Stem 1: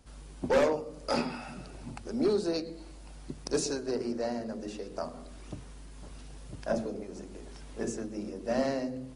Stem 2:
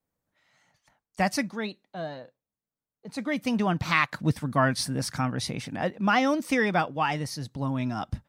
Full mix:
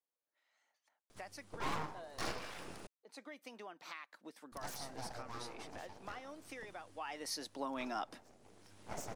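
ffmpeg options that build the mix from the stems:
ffmpeg -i stem1.wav -i stem2.wav -filter_complex "[0:a]aeval=exprs='abs(val(0))':channel_layout=same,adelay=1100,volume=0dB,asplit=3[link_01][link_02][link_03];[link_01]atrim=end=2.87,asetpts=PTS-STARTPTS,afade=type=out:start_time=2.866:duration=0.004:curve=hsin[link_04];[link_02]atrim=start=2.87:end=4.52,asetpts=PTS-STARTPTS,volume=0[link_05];[link_03]atrim=start=4.52,asetpts=PTS-STARTPTS,afade=type=in:duration=0.004:curve=hsin[link_06];[link_04][link_05][link_06]concat=n=3:v=0:a=1[link_07];[1:a]highpass=frequency=320:width=0.5412,highpass=frequency=320:width=1.3066,acompressor=threshold=-34dB:ratio=5,volume=-1.5dB,afade=type=in:start_time=6.9:duration=0.42:silence=0.266073,asplit=2[link_08][link_09];[link_09]apad=whole_len=452225[link_10];[link_07][link_10]sidechaincompress=threshold=-55dB:ratio=6:attack=16:release=947[link_11];[link_11][link_08]amix=inputs=2:normalize=0,lowshelf=frequency=140:gain=-7.5" out.wav

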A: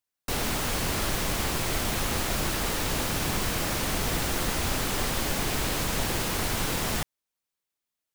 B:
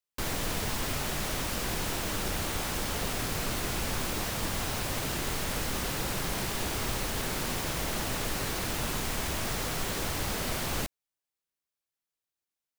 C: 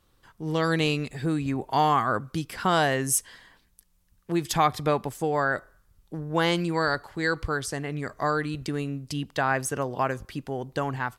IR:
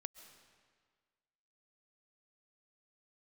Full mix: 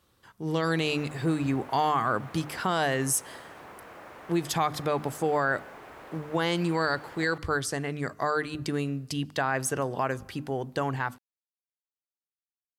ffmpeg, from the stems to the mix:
-filter_complex "[0:a]acrossover=split=370 2000:gain=0.178 1 0.0794[link_01][link_02][link_03];[link_01][link_02][link_03]amix=inputs=3:normalize=0,adelay=350,volume=-11.5dB[link_04];[2:a]bandreject=frequency=50:width_type=h:width=6,bandreject=frequency=100:width_type=h:width=6,bandreject=frequency=150:width_type=h:width=6,bandreject=frequency=200:width_type=h:width=6,bandreject=frequency=250:width_type=h:width=6,bandreject=frequency=300:width_type=h:width=6,volume=0dB,asplit=2[link_05][link_06];[link_06]volume=-15dB[link_07];[link_04][link_05]amix=inputs=2:normalize=0,alimiter=limit=-17.5dB:level=0:latency=1:release=91,volume=0dB[link_08];[3:a]atrim=start_sample=2205[link_09];[link_07][link_09]afir=irnorm=-1:irlink=0[link_10];[link_08][link_10]amix=inputs=2:normalize=0,highpass=72"

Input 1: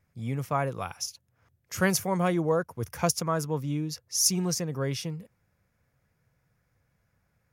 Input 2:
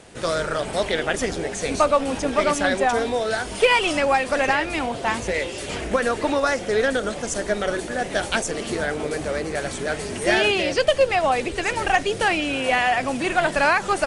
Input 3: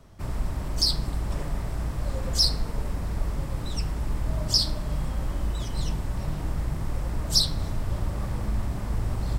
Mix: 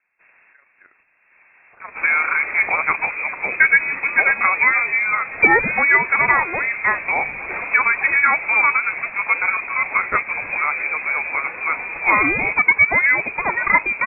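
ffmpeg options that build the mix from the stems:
ffmpeg -i stem1.wav -i stem2.wav -i stem3.wav -filter_complex "[0:a]highpass=930,tremolo=f=27:d=0.71,volume=-12dB,afade=type=in:start_time=0.63:duration=0.27:silence=0.316228,asplit=2[link_01][link_02];[1:a]adelay=1800,volume=-1dB[link_03];[2:a]volume=-11dB[link_04];[link_02]apad=whole_len=414064[link_05];[link_04][link_05]sidechaincompress=threshold=-60dB:ratio=4:attack=11:release=881[link_06];[link_01][link_03][link_06]amix=inputs=3:normalize=0,highpass=400,dynaudnorm=framelen=170:gausssize=13:maxgain=11.5dB,lowpass=frequency=2400:width_type=q:width=0.5098,lowpass=frequency=2400:width_type=q:width=0.6013,lowpass=frequency=2400:width_type=q:width=0.9,lowpass=frequency=2400:width_type=q:width=2.563,afreqshift=-2800" out.wav

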